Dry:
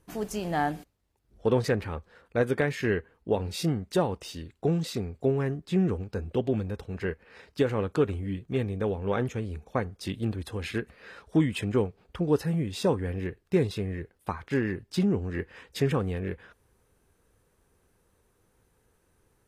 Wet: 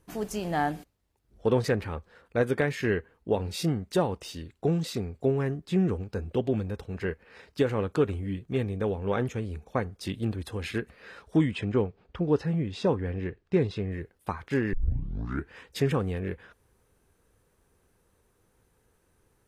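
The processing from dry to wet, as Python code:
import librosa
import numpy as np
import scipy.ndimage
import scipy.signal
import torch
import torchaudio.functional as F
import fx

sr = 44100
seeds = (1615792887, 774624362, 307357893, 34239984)

y = fx.air_absorb(x, sr, metres=110.0, at=(11.51, 13.92))
y = fx.edit(y, sr, fx.tape_start(start_s=14.73, length_s=0.8), tone=tone)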